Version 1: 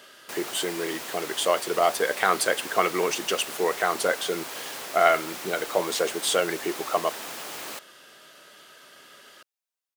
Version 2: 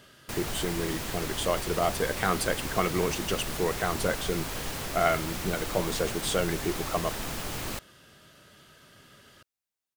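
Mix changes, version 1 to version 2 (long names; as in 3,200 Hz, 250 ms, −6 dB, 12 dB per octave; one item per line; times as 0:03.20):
speech −6.0 dB
master: remove high-pass filter 410 Hz 12 dB per octave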